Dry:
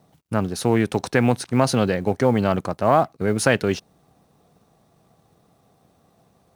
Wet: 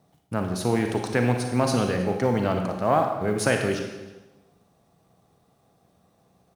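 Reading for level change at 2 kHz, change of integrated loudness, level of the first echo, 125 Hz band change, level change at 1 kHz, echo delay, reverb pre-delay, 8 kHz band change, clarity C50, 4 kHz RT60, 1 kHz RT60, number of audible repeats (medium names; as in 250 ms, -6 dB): -3.5 dB, -3.5 dB, -22.5 dB, -3.0 dB, -3.5 dB, 315 ms, 32 ms, -3.5 dB, 4.5 dB, 1.0 s, 1.1 s, 1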